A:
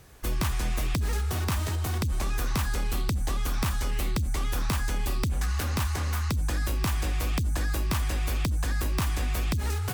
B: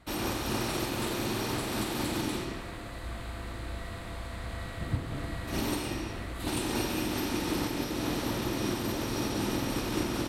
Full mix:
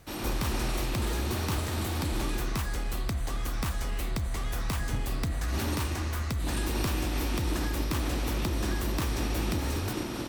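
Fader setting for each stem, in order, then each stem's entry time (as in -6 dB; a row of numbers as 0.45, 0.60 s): -4.0, -3.0 dB; 0.00, 0.00 s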